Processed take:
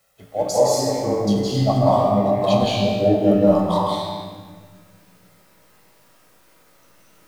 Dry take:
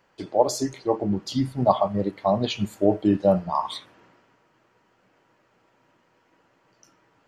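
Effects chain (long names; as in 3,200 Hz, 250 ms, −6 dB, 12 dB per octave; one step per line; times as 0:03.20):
adaptive Wiener filter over 9 samples
high-shelf EQ 3,700 Hz +11 dB
bit-depth reduction 10 bits, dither triangular
tuned comb filter 55 Hz, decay 1.1 s, harmonics all, mix 80%
convolution reverb RT60 1.6 s, pre-delay 160 ms, DRR −7.5 dB
level +2.5 dB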